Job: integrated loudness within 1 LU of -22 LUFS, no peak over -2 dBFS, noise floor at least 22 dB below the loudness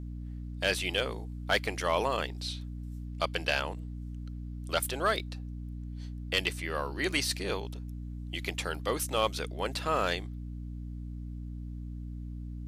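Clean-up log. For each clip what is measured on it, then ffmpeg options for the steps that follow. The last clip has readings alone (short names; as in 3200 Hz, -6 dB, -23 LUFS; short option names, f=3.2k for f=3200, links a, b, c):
hum 60 Hz; harmonics up to 300 Hz; hum level -37 dBFS; loudness -33.5 LUFS; peak -16.0 dBFS; loudness target -22.0 LUFS
-> -af "bandreject=f=60:t=h:w=6,bandreject=f=120:t=h:w=6,bandreject=f=180:t=h:w=6,bandreject=f=240:t=h:w=6,bandreject=f=300:t=h:w=6"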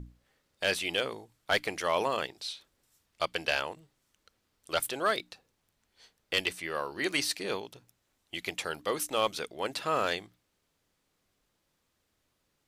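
hum none; loudness -32.0 LUFS; peak -16.5 dBFS; loudness target -22.0 LUFS
-> -af "volume=10dB"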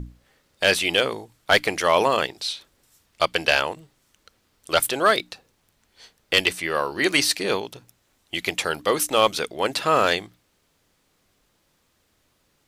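loudness -22.0 LUFS; peak -6.5 dBFS; noise floor -67 dBFS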